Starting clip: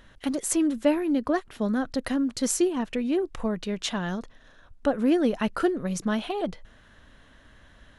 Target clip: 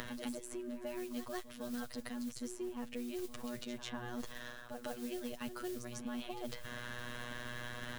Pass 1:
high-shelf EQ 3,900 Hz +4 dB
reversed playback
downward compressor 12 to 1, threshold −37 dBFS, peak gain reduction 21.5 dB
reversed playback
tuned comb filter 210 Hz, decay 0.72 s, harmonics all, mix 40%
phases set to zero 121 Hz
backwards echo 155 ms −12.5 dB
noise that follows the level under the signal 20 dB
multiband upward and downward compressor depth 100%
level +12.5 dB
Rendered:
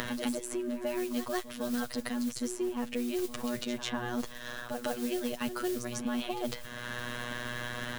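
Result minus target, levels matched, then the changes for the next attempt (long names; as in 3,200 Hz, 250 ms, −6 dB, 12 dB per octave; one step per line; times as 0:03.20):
downward compressor: peak gain reduction −9 dB
change: downward compressor 12 to 1, threshold −47 dBFS, peak gain reduction 30.5 dB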